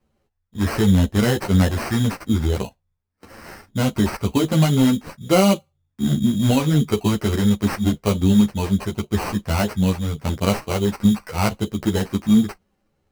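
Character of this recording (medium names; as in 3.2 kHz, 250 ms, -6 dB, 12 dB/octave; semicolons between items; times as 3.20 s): aliases and images of a low sample rate 3.5 kHz, jitter 0%; a shimmering, thickened sound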